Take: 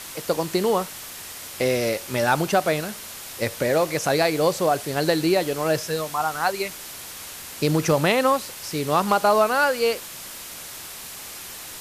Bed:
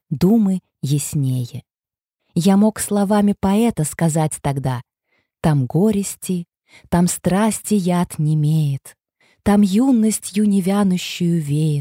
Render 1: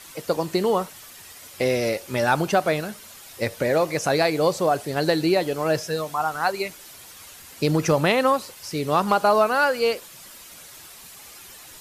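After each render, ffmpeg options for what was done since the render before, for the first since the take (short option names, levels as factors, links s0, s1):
-af "afftdn=nr=9:nf=-38"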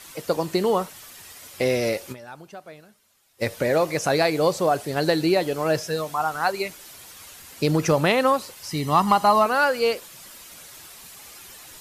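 -filter_complex "[0:a]asettb=1/sr,asplit=3[s0][s1][s2];[s0]atrim=end=8.694[s3];[s1]atrim=start=8.69:end=9.46,asetpts=PTS-STARTPTS,afade=t=in:d=0.004:c=qsin,afade=t=out:st=0.766:d=0.004:c=qsin,aecho=1:1:1:0.65,atrim=end_sample=33957[s4];[s2]atrim=start=9.456[s5];[s3][s4]acrossfade=d=0.004:c1=hsin:c2=qsin[s6];[s6][s5]acrossfade=d=0.004:c1=qsin:c2=hsin,asplit=3[s7][s8][s9];[s7]atrim=end=2.26,asetpts=PTS-STARTPTS,afade=t=out:st=2.12:d=0.14:c=exp:silence=0.0944061[s10];[s8]atrim=start=2.26:end=3.28,asetpts=PTS-STARTPTS,volume=0.0944[s11];[s9]atrim=start=3.28,asetpts=PTS-STARTPTS,afade=t=in:d=0.14:c=exp:silence=0.0944061[s12];[s10][s11][s12]concat=n=3:v=0:a=1"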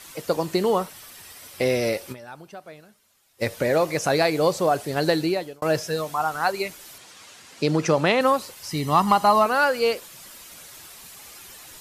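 -filter_complex "[0:a]asettb=1/sr,asplit=3[s0][s1][s2];[s0]atrim=end=0.794[s3];[s1]atrim=start=0.79:end=2.63,asetpts=PTS-STARTPTS,afade=t=in:d=0.004:c=qsin,afade=t=out:st=1.836:d=0.004:c=qsin,bandreject=f=6800:w=11[s4];[s2]atrim=start=2.626[s5];[s3][s4]acrossfade=d=0.004:c1=hsin:c2=qsin[s6];[s6][s5]acrossfade=d=0.004:c1=qsin:c2=hsin,asettb=1/sr,asplit=3[s7][s8][s9];[s7]atrim=end=6.984[s10];[s8]atrim=start=6.98:end=8.21,asetpts=PTS-STARTPTS,afade=t=in:d=0.004:c=qsin,afade=t=out:st=1.226:d=0.004:c=qsin,highpass=140,lowpass=7300[s11];[s9]atrim=start=8.206[s12];[s10][s11]acrossfade=d=0.004:c1=hsin:c2=qsin[s13];[s13][s12]acrossfade=d=0.004:c1=qsin:c2=hsin,asplit=2[s14][s15];[s14]atrim=end=5.62,asetpts=PTS-STARTPTS,afade=t=out:st=5.15:d=0.47[s16];[s15]atrim=start=5.62,asetpts=PTS-STARTPTS,afade=t=in:d=0.004:c=hsin[s17];[s16][s17]concat=n=2:v=0:a=1"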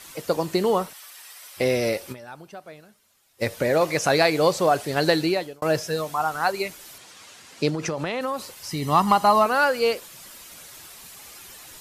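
-filter_complex "[0:a]asettb=1/sr,asplit=3[s0][s1][s2];[s0]atrim=end=0.934[s3];[s1]atrim=start=0.93:end=1.57,asetpts=PTS-STARTPTS,afade=t=in:d=0.004:c=qsin,afade=t=out:st=0.636:d=0.004:c=qsin,highpass=790[s4];[s2]atrim=start=1.566[s5];[s3][s4]acrossfade=d=0.004:c1=hsin:c2=qsin[s6];[s6][s5]acrossfade=d=0.004:c1=qsin:c2=hsin,asettb=1/sr,asplit=3[s7][s8][s9];[s7]atrim=end=3.814[s10];[s8]atrim=start=3.81:end=5.47,asetpts=PTS-STARTPTS,afade=t=in:d=0.004:c=qsin,afade=t=out:st=1.656:d=0.004:c=qsin,equalizer=f=2600:w=0.36:g=3.5[s11];[s9]atrim=start=5.466[s12];[s10][s11]acrossfade=d=0.004:c1=hsin:c2=qsin[s13];[s13][s12]acrossfade=d=0.004:c1=qsin:c2=hsin,asettb=1/sr,asplit=3[s14][s15][s16];[s14]atrim=end=7.694[s17];[s15]atrim=start=7.69:end=8.82,asetpts=PTS-STARTPTS,afade=t=in:d=0.004:c=qsin,afade=t=out:st=1.126:d=0.004:c=qsin,acompressor=threshold=0.0708:ratio=6:attack=3.2:release=140:knee=1:detection=peak[s18];[s16]atrim=start=8.816[s19];[s17][s18]acrossfade=d=0.004:c1=hsin:c2=qsin[s20];[s20][s19]acrossfade=d=0.004:c1=qsin:c2=hsin"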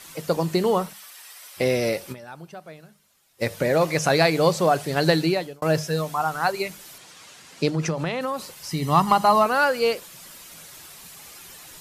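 -af "equalizer=f=160:w=4.4:g=8.5,bandreject=f=50:t=h:w=6,bandreject=f=100:t=h:w=6,bandreject=f=150:t=h:w=6,bandreject=f=200:t=h:w=6"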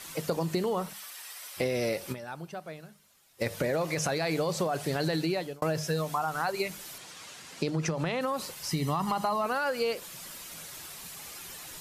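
-af "alimiter=limit=0.2:level=0:latency=1:release=17,acompressor=threshold=0.0501:ratio=6"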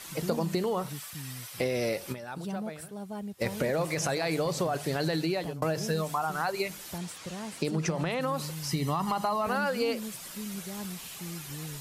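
-filter_complex "[1:a]volume=0.0708[s0];[0:a][s0]amix=inputs=2:normalize=0"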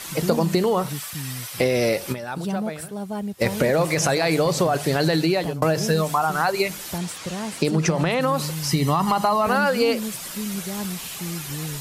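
-af "volume=2.82"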